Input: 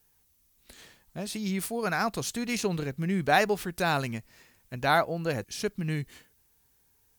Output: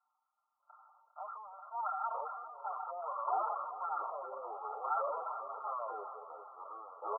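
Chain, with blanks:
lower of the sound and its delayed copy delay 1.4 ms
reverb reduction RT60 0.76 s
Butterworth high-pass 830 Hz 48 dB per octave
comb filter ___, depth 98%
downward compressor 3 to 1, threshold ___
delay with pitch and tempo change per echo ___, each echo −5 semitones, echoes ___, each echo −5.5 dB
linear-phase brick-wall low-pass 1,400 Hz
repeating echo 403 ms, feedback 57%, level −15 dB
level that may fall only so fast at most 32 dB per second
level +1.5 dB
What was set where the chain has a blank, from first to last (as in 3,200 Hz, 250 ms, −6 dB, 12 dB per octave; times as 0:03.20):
6.6 ms, −35 dBFS, 591 ms, 2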